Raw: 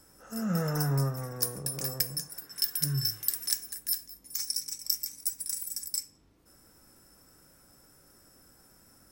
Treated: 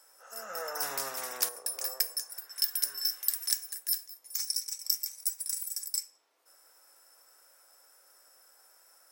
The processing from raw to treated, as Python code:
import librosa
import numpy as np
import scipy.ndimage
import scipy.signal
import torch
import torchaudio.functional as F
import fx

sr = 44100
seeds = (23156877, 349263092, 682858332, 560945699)

y = scipy.signal.sosfilt(scipy.signal.butter(4, 550.0, 'highpass', fs=sr, output='sos'), x)
y = fx.spectral_comp(y, sr, ratio=2.0, at=(0.82, 1.49))